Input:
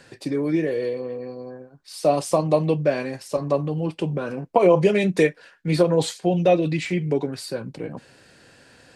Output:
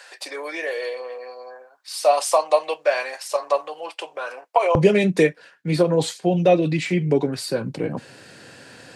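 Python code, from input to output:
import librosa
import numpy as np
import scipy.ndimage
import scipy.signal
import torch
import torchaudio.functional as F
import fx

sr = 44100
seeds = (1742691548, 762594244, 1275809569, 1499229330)

y = fx.highpass(x, sr, hz=fx.steps((0.0, 650.0), (4.75, 95.0)), slope=24)
y = fx.rider(y, sr, range_db=5, speed_s=2.0)
y = y * 10.0 ** (2.5 / 20.0)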